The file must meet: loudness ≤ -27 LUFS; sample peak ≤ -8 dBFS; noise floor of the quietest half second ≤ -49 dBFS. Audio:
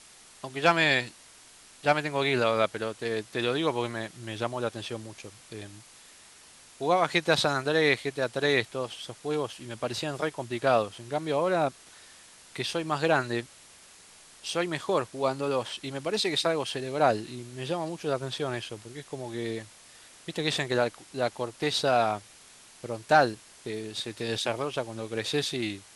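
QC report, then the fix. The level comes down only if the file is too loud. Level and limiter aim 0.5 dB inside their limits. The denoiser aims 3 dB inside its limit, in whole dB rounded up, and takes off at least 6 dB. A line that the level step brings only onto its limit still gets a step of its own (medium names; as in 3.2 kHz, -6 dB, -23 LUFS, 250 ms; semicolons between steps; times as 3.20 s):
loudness -28.5 LUFS: pass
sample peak -7.5 dBFS: fail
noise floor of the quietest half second -53 dBFS: pass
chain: peak limiter -8.5 dBFS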